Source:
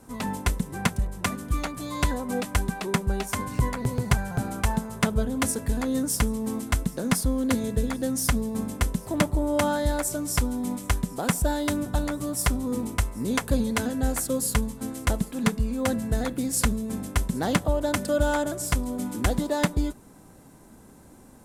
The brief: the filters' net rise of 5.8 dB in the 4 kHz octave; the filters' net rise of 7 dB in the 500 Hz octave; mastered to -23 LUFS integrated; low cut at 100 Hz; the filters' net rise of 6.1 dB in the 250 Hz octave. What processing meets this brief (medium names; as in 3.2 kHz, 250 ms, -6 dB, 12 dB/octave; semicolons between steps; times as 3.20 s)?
high-pass 100 Hz; peaking EQ 250 Hz +5.5 dB; peaking EQ 500 Hz +7 dB; peaking EQ 4 kHz +7.5 dB